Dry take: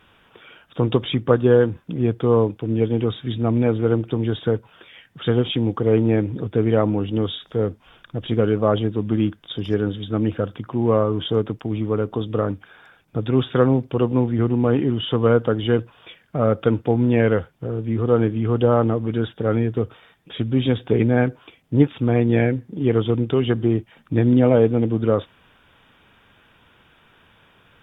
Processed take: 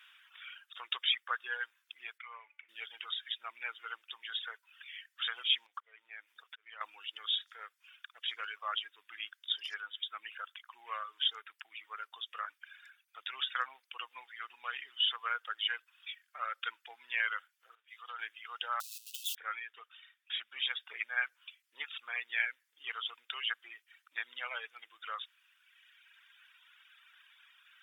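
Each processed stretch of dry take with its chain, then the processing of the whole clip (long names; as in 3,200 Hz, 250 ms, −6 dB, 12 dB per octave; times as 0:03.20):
0:02.18–0:02.69: low-pass with resonance 2,200 Hz, resonance Q 8.6 + tuned comb filter 290 Hz, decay 0.59 s, mix 70%
0:05.66–0:06.81: volume swells 419 ms + downward compressor 3 to 1, threshold −25 dBFS
0:17.75–0:18.19: high-pass filter 490 Hz + downward compressor, threshold −22 dBFS + multiband upward and downward expander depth 70%
0:18.80–0:19.35: spike at every zero crossing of −21.5 dBFS + linear-phase brick-wall band-stop 320–2,500 Hz + high-shelf EQ 3,400 Hz −6 dB
whole clip: reverb reduction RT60 1.9 s; high-pass filter 1,500 Hz 24 dB per octave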